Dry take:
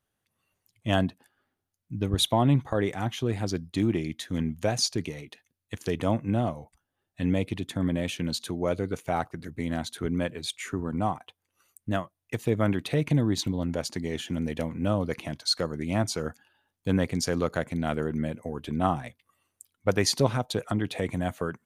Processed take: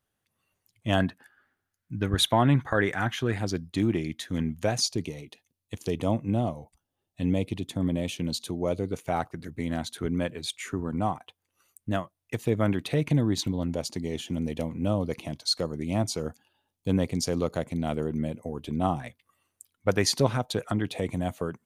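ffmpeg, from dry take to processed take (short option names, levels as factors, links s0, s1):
-af "asetnsamples=n=441:p=0,asendcmd='1 equalizer g 12;3.38 equalizer g 1;4.8 equalizer g -10;8.95 equalizer g -1.5;13.68 equalizer g -9.5;19 equalizer g 0.5;20.89 equalizer g -7',equalizer=f=1600:t=o:w=0.78:g=0"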